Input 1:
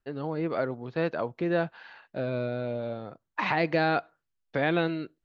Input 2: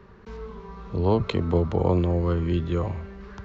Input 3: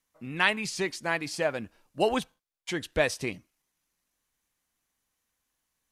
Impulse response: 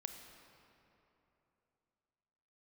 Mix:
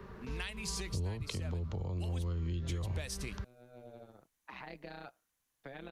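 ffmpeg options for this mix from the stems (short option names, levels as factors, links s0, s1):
-filter_complex "[0:a]tremolo=f=130:d=0.857,adelay=1100,volume=0.178[s0];[1:a]volume=1.06[s1];[2:a]volume=0.631,asplit=2[s2][s3];[s3]apad=whole_len=279888[s4];[s0][s4]sidechaincompress=threshold=0.00316:ratio=5:attack=5.3:release=409[s5];[s1][s2]amix=inputs=2:normalize=0,acompressor=threshold=0.0355:ratio=6,volume=1[s6];[s5][s6]amix=inputs=2:normalize=0,highshelf=f=9900:g=4.5,acrossover=split=140|3000[s7][s8][s9];[s8]acompressor=threshold=0.00631:ratio=6[s10];[s7][s10][s9]amix=inputs=3:normalize=0"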